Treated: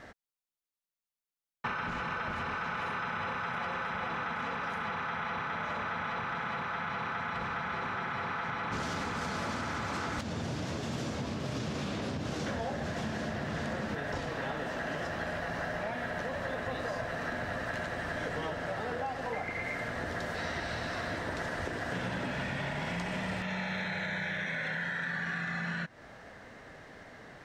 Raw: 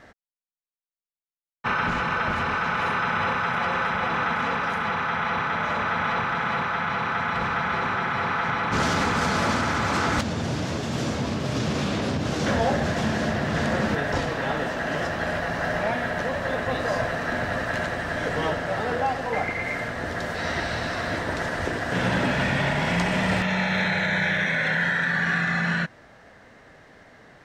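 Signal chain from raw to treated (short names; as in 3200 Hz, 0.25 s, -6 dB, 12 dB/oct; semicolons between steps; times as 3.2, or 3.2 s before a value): compressor, threshold -33 dBFS, peak gain reduction 13.5 dB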